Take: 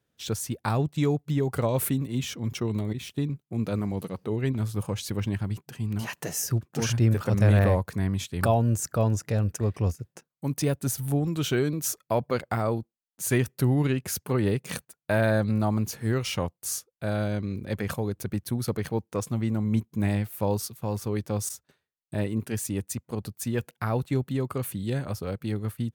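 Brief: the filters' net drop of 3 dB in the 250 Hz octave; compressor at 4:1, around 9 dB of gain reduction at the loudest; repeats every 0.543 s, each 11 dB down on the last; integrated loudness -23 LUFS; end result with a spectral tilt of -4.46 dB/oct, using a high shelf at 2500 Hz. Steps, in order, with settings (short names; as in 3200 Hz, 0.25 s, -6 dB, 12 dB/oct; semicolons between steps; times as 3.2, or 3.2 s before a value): bell 250 Hz -4 dB; high shelf 2500 Hz +4.5 dB; compressor 4:1, threshold -27 dBFS; feedback echo 0.543 s, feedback 28%, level -11 dB; gain +8.5 dB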